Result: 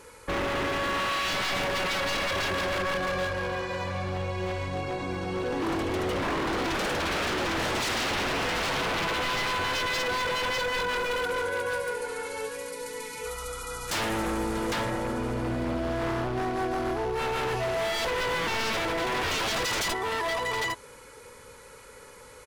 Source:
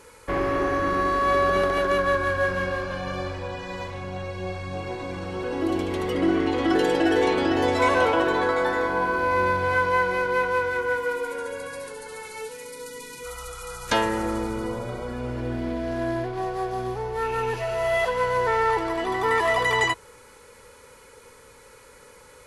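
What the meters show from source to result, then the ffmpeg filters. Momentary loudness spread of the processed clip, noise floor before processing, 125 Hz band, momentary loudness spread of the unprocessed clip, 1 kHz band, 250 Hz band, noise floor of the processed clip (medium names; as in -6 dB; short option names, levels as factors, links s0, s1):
9 LU, -50 dBFS, -2.0 dB, 14 LU, -5.0 dB, -5.5 dB, -49 dBFS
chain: -af "aecho=1:1:640|805:0.112|0.531,aeval=exprs='0.0668*(abs(mod(val(0)/0.0668+3,4)-2)-1)':c=same"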